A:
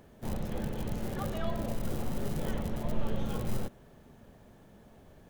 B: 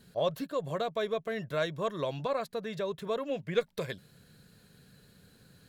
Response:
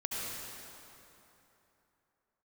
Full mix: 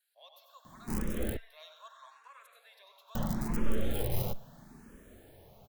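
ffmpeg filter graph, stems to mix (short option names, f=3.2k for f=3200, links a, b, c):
-filter_complex "[0:a]adelay=650,volume=0.5dB,asplit=3[a][b][c];[a]atrim=end=1.37,asetpts=PTS-STARTPTS,afade=t=out:st=1.366:d=0.004:c=hsin[d];[b]atrim=start=1.37:end=3.15,asetpts=PTS-STARTPTS,volume=0[e];[c]atrim=start=3.15,asetpts=PTS-STARTPTS,afade=t=in:d=0.004:c=hsin[f];[d][e][f]concat=n=3:v=0:a=1[g];[1:a]highpass=f=910:w=0.5412,highpass=f=910:w=1.3066,volume=-19.5dB,asplit=3[h][i][j];[i]volume=-5dB[k];[j]volume=-6dB[l];[2:a]atrim=start_sample=2205[m];[k][m]afir=irnorm=-1:irlink=0[n];[l]aecho=0:1:95:1[o];[g][h][n][o]amix=inputs=4:normalize=0,dynaudnorm=f=130:g=9:m=3.5dB,highshelf=f=10k:g=11,asplit=2[p][q];[q]afreqshift=0.77[r];[p][r]amix=inputs=2:normalize=1"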